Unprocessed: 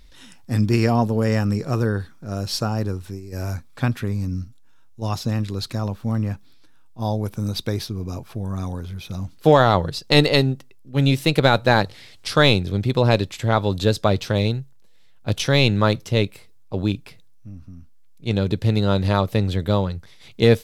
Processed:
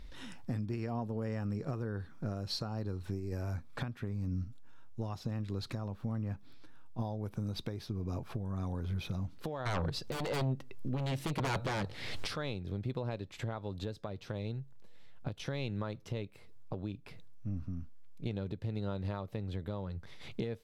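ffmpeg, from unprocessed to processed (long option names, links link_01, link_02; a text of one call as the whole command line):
ffmpeg -i in.wav -filter_complex "[0:a]asettb=1/sr,asplit=3[link_01][link_02][link_03];[link_01]atrim=end=2.504[link_04];[link_02]atrim=start=2.5:end=3.03,asetpts=PTS-STARTPTS,afade=type=in:duration=0.004:curve=qsin,afade=type=out:start_time=0.526:duration=0.004:curve=qsin,equalizer=frequency=4200:width=6.1:gain=13[link_05];[link_03]atrim=start=3.026[link_06];[link_04][link_05]acrossfade=duration=0.004:curve1=hsin:curve2=qsin[link_07];[link_07][link_06]acrossfade=duration=0.004:curve1=qsin:curve2=hsin,asplit=3[link_08][link_09][link_10];[link_08]afade=type=out:start_time=9.65:duration=0.02[link_11];[link_09]aeval=exprs='0.75*sin(PI/2*5.01*val(0)/0.75)':channel_layout=same,afade=type=in:start_time=9.65:duration=0.02,afade=type=out:start_time=12.35:duration=0.02[link_12];[link_10]afade=type=in:start_time=12.35:duration=0.02[link_13];[link_11][link_12][link_13]amix=inputs=3:normalize=0,highshelf=frequency=3500:gain=-11.5,acompressor=threshold=-31dB:ratio=12,alimiter=level_in=3.5dB:limit=-24dB:level=0:latency=1:release=430,volume=-3.5dB,volume=1dB" out.wav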